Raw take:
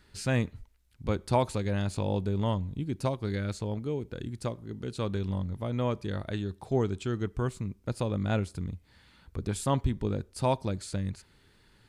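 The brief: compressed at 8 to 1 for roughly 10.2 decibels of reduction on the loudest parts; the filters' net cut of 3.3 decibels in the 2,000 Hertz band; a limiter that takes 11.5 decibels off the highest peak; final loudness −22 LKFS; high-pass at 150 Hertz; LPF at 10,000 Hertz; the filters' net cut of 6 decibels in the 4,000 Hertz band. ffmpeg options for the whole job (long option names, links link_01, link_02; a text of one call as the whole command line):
ffmpeg -i in.wav -af "highpass=150,lowpass=10000,equalizer=frequency=2000:width_type=o:gain=-3,equalizer=frequency=4000:width_type=o:gain=-6.5,acompressor=threshold=-32dB:ratio=8,volume=22.5dB,alimiter=limit=-11dB:level=0:latency=1" out.wav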